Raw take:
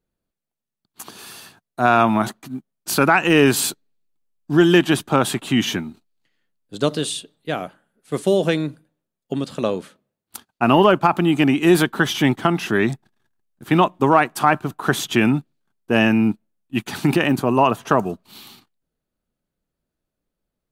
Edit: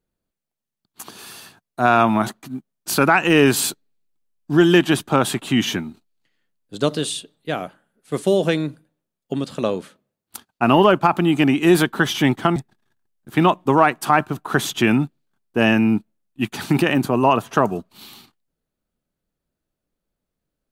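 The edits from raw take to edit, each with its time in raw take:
12.56–12.90 s: delete

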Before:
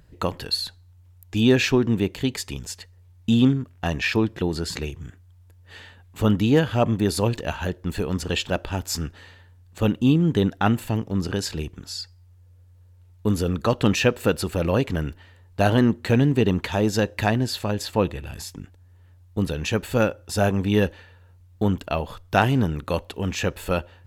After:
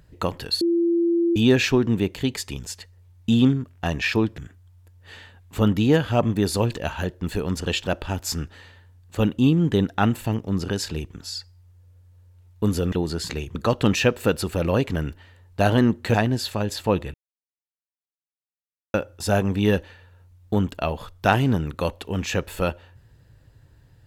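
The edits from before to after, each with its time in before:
0.61–1.36 s: bleep 340 Hz -17 dBFS
4.38–5.01 s: move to 13.55 s
16.14–17.23 s: delete
18.23–20.03 s: mute

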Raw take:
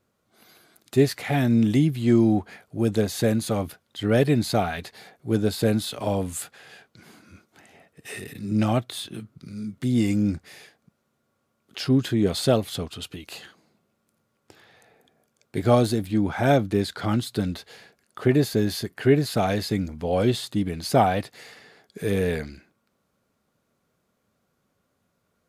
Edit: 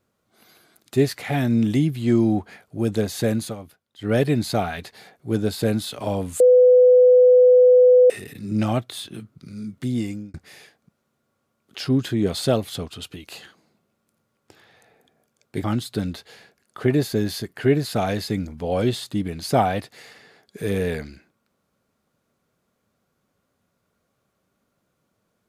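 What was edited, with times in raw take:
3.43–4.11 s: dip -11.5 dB, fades 0.13 s
6.40–8.10 s: bleep 500 Hz -9 dBFS
9.81–10.34 s: fade out
15.64–17.05 s: delete

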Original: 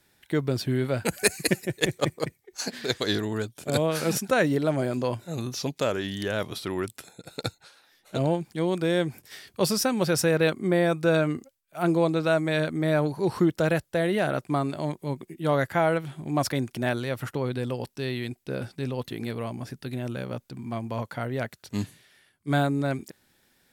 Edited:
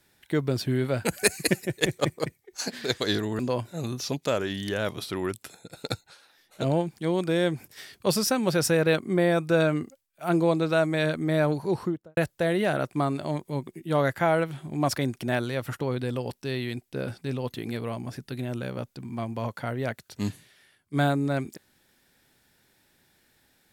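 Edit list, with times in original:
3.39–4.93 s: delete
13.14–13.71 s: studio fade out

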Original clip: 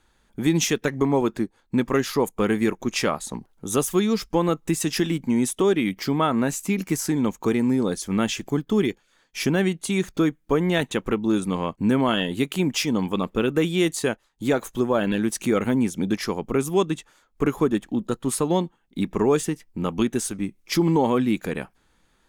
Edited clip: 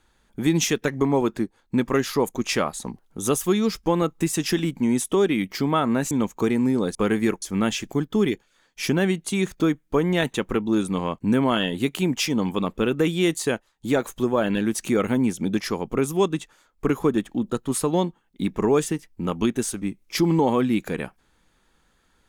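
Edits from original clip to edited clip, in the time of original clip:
2.34–2.81 s: move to 7.99 s
6.58–7.15 s: delete

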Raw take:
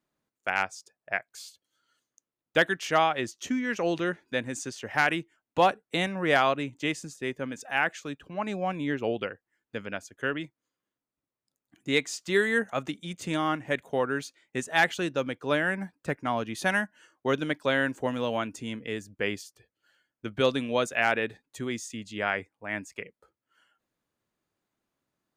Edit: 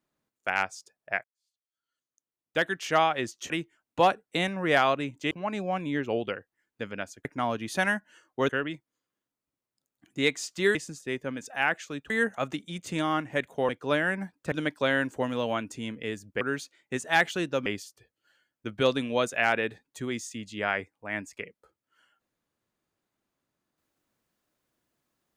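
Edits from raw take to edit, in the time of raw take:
1.24–2.93 s: fade in quadratic
3.50–5.09 s: delete
6.90–8.25 s: move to 12.45 s
14.04–15.29 s: move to 19.25 s
16.12–17.36 s: move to 10.19 s

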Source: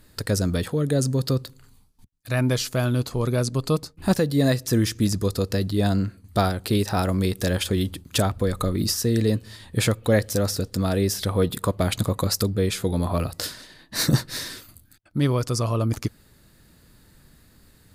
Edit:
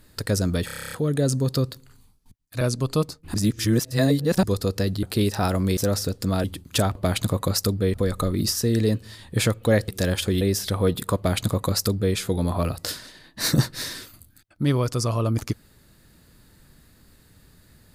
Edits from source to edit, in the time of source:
0.65 s: stutter 0.03 s, 10 plays
2.34–3.35 s: delete
4.08–5.17 s: reverse
5.77–6.57 s: delete
7.31–7.84 s: swap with 10.29–10.96 s
11.71–12.70 s: copy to 8.35 s

